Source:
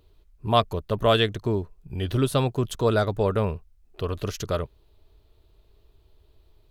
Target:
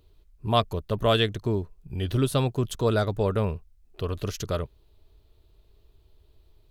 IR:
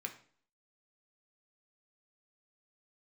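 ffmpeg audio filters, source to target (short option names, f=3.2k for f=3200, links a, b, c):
-af "equalizer=f=970:w=0.4:g=-3"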